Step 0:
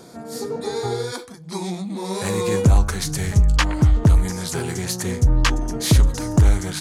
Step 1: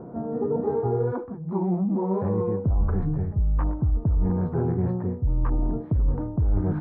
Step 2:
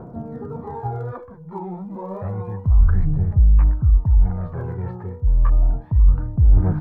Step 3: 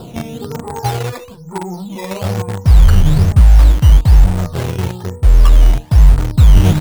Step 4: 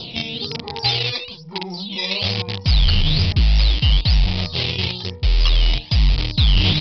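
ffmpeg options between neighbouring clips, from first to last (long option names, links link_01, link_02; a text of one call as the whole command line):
ffmpeg -i in.wav -af "lowpass=frequency=1100:width=0.5412,lowpass=frequency=1100:width=1.3066,lowshelf=frequency=410:gain=6.5,areverse,acompressor=threshold=-21dB:ratio=8,areverse,volume=1dB" out.wav
ffmpeg -i in.wav -af "aphaser=in_gain=1:out_gain=1:delay=2.4:decay=0.58:speed=0.3:type=triangular,equalizer=frequency=320:width_type=o:width=2.4:gain=-12,volume=4dB" out.wav
ffmpeg -i in.wav -filter_complex "[0:a]asplit=2[link_01][link_02];[link_02]acrusher=bits=3:mix=0:aa=0.000001,volume=-7dB[link_03];[link_01][link_03]amix=inputs=2:normalize=0,apsyclip=7dB,acrusher=samples=10:mix=1:aa=0.000001:lfo=1:lforange=10:lforate=1.1,volume=-1.5dB" out.wav
ffmpeg -i in.wav -af "aexciter=amount=10.9:drive=5.3:freq=2300,aresample=11025,asoftclip=type=tanh:threshold=-4.5dB,aresample=44100,volume=-5.5dB" out.wav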